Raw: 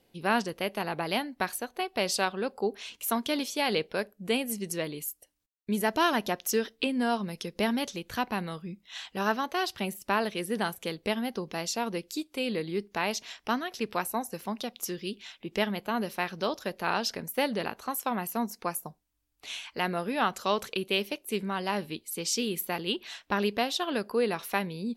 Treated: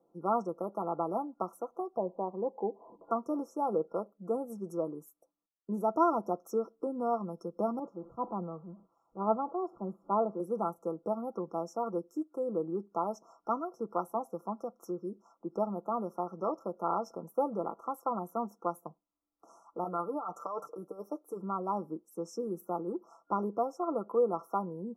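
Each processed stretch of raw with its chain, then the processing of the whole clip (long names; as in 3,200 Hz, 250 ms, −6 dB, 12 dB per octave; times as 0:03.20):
0:01.97–0:03.11: Butterworth low-pass 1,000 Hz 72 dB per octave + upward compression, threshold −39 dBFS
0:07.79–0:10.40: converter with a step at zero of −38.5 dBFS + moving average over 22 samples + multiband upward and downward expander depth 100%
0:19.84–0:21.42: low-shelf EQ 300 Hz −12 dB + compressor whose output falls as the input rises −33 dBFS + comb filter 6.7 ms, depth 62%
whole clip: brick-wall band-stop 1,400–5,300 Hz; three-way crossover with the lows and the highs turned down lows −22 dB, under 190 Hz, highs −22 dB, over 2,500 Hz; comb filter 6 ms, depth 50%; level −2 dB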